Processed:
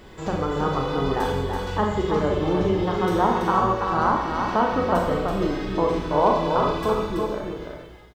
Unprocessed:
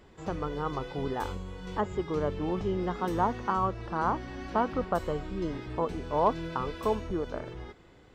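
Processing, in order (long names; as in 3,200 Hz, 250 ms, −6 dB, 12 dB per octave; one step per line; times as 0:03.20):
fade-out on the ending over 1.62 s
parametric band 3,800 Hz +2.5 dB
mains-hum notches 50/100 Hz
in parallel at 0 dB: downward compressor, threshold −40 dBFS, peak gain reduction 19.5 dB
on the sum: bit reduction 12 bits
on a send: single-tap delay 331 ms −5 dB
on the sum: four-comb reverb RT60 0.83 s, combs from 30 ms, DRR 1 dB
level +3.5 dB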